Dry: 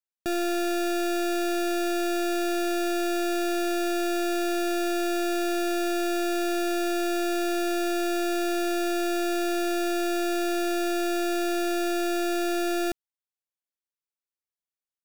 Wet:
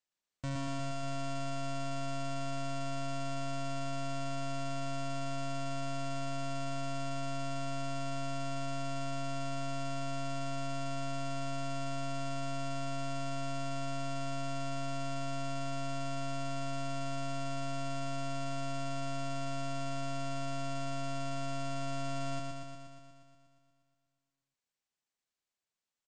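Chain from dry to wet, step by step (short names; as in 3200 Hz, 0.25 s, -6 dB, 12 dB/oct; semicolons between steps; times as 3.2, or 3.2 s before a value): limiter -35.5 dBFS, peak gain reduction 9.5 dB; pitch shift -6.5 st; vocal rider 0.5 s; on a send: flutter echo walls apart 11.8 m, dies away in 1.3 s; on the sum: speed mistake 78 rpm record played at 45 rpm; gain -2 dB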